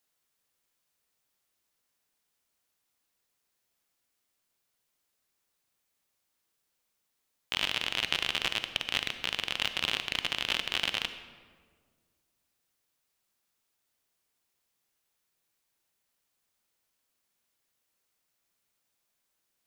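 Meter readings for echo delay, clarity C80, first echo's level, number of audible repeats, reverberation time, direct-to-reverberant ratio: none, 11.5 dB, none, none, 1.7 s, 9.5 dB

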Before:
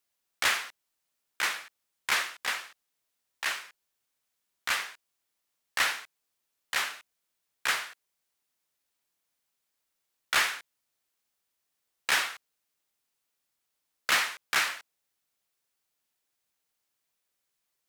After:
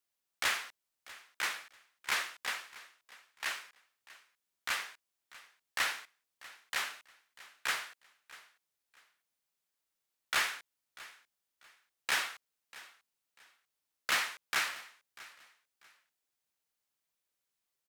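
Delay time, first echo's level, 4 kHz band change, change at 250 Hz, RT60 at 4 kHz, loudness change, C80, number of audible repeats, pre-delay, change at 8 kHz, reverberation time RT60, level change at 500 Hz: 0.642 s, -19.5 dB, -5.5 dB, -5.5 dB, none, -5.5 dB, none, 2, none, -5.5 dB, none, -5.5 dB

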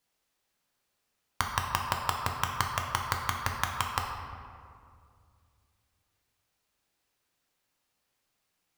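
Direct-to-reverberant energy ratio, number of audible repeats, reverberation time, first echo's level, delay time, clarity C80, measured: 0.5 dB, none, 2.3 s, none, none, 5.0 dB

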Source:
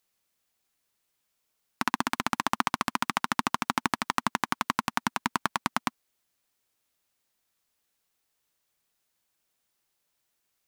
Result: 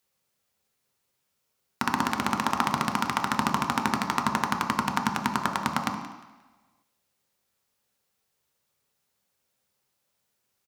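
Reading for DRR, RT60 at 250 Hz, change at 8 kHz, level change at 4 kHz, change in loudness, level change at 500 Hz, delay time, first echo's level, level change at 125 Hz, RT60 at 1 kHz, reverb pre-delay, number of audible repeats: 1.5 dB, 1.0 s, +0.5 dB, +0.5 dB, +2.5 dB, +4.0 dB, 0.177 s, -16.5 dB, +7.0 dB, 1.2 s, 3 ms, 1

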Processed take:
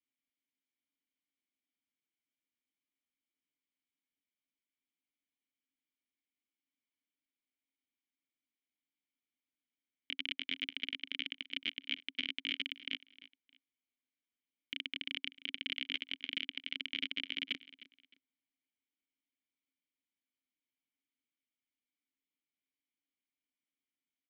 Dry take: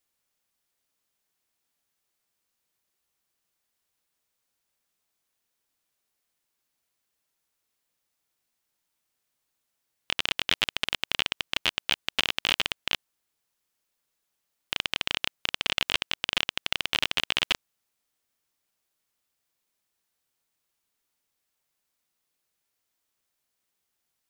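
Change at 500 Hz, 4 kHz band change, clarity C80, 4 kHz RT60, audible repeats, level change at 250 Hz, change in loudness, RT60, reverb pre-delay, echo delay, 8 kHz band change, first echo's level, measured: -20.0 dB, -10.5 dB, none, none, 2, -5.0 dB, -11.0 dB, none, none, 0.308 s, under -25 dB, -18.0 dB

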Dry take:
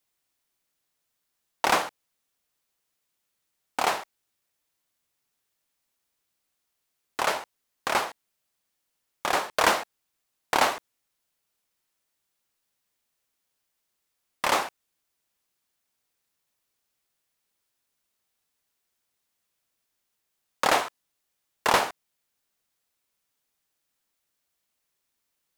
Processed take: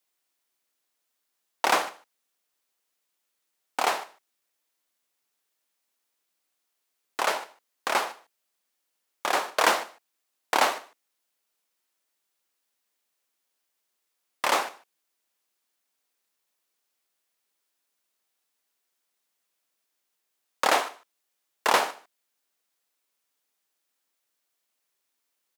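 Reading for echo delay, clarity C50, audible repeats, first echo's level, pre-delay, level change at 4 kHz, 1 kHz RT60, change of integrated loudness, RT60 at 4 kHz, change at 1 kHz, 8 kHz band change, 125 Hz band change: 0.149 s, none, 1, -22.5 dB, none, 0.0 dB, none, -0.5 dB, none, 0.0 dB, 0.0 dB, n/a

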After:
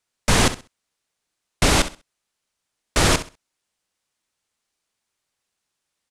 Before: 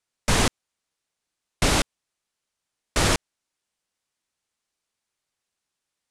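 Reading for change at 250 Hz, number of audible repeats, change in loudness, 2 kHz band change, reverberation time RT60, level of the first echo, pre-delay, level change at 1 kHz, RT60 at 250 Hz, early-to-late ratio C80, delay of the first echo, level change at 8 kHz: +4.0 dB, 2, +3.5 dB, +3.5 dB, none, -13.0 dB, none, +3.5 dB, none, none, 65 ms, +3.5 dB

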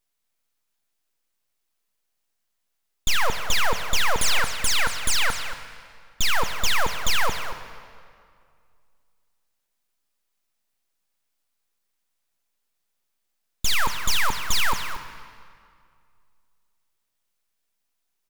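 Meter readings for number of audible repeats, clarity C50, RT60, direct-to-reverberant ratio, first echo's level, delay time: 1, 7.5 dB, 2.2 s, 6.5 dB, -12.0 dB, 0.231 s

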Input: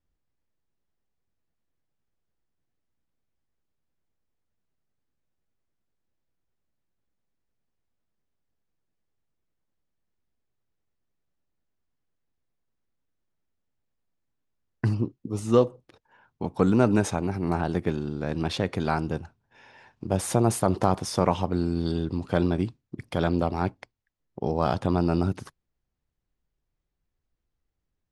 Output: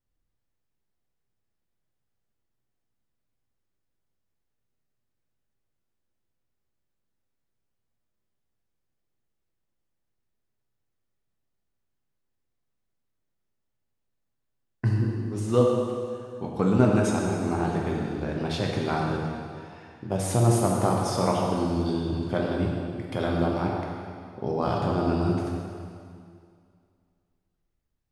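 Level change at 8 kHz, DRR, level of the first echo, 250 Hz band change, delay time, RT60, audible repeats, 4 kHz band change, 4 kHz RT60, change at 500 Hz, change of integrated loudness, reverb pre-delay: +0.5 dB, -2.0 dB, none, 0.0 dB, none, 2.3 s, none, +0.5 dB, 2.2 s, +0.5 dB, 0.0 dB, 5 ms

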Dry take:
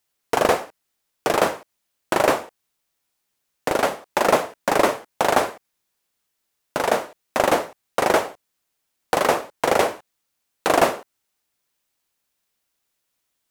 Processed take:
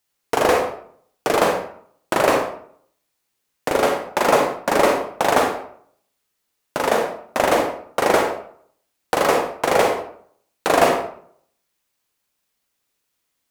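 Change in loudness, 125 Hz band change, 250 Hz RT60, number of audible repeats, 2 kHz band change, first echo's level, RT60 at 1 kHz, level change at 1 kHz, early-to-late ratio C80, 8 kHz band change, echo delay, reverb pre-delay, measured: +2.0 dB, +2.0 dB, 0.65 s, none, +2.0 dB, none, 0.60 s, +2.0 dB, 9.0 dB, +1.0 dB, none, 36 ms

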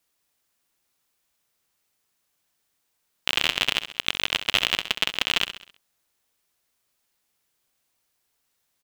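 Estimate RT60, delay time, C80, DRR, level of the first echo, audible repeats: none, 66 ms, none, none, -11.5 dB, 4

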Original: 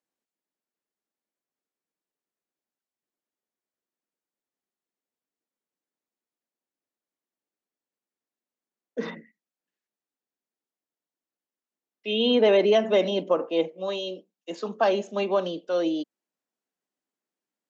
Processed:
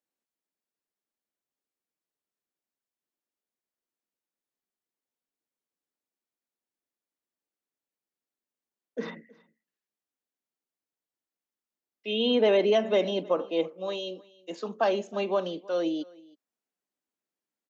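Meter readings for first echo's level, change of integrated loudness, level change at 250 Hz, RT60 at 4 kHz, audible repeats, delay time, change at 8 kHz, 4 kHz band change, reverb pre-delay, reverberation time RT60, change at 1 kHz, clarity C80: -23.5 dB, -3.0 dB, -3.0 dB, none, 1, 0.319 s, n/a, -3.0 dB, none, none, -3.0 dB, none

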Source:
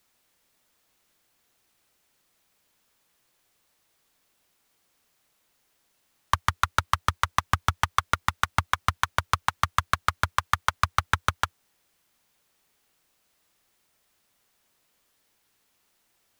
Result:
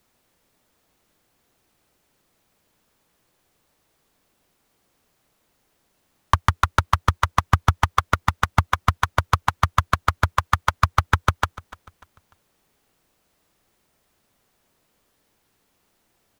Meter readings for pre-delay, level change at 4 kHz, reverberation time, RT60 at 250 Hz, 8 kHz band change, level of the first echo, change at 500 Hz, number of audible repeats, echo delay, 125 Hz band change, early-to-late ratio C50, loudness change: none, +1.0 dB, none, none, 0.0 dB, -19.5 dB, +7.5 dB, 2, 0.296 s, +9.5 dB, none, +4.5 dB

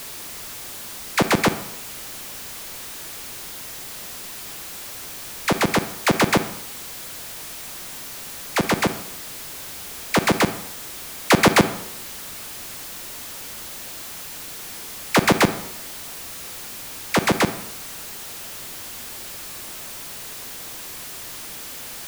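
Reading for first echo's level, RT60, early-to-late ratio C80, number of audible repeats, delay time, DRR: none, 0.75 s, 15.0 dB, none, none, 11.0 dB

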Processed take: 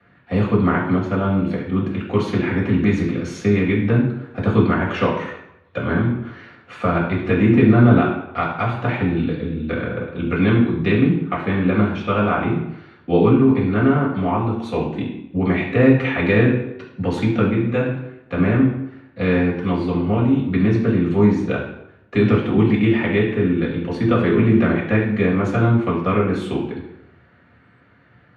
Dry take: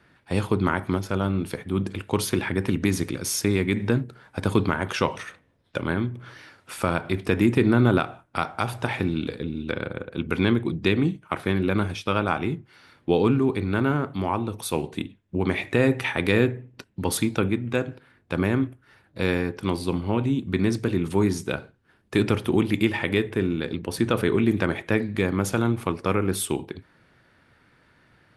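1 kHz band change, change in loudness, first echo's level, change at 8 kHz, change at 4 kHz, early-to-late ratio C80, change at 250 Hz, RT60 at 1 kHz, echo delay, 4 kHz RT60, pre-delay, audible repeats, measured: +5.0 dB, +6.0 dB, none, under -10 dB, -2.0 dB, 8.0 dB, +7.0 dB, 0.85 s, none, 0.65 s, 3 ms, none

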